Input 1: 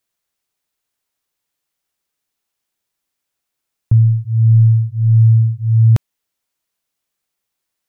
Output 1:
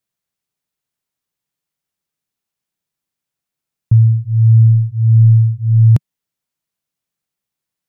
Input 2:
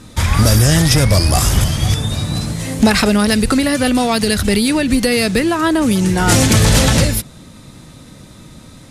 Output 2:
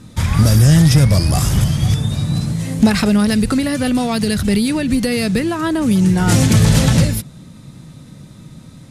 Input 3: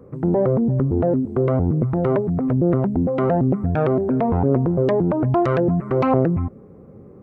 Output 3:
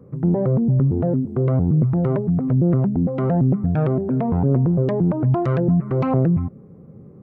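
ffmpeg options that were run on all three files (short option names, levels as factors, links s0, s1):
-af "equalizer=f=150:w=1.1:g=10,volume=0.531"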